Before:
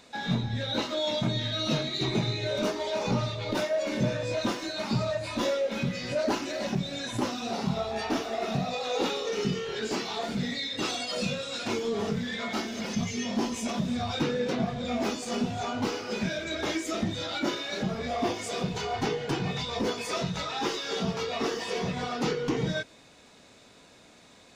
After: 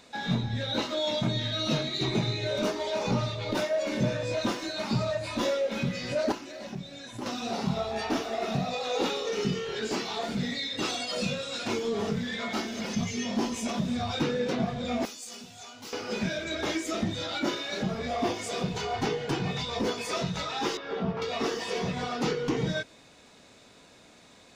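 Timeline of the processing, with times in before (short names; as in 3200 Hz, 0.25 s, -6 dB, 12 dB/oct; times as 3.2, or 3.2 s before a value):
6.32–7.26 gain -8.5 dB
15.05–15.93 pre-emphasis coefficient 0.9
20.77–21.22 LPF 1800 Hz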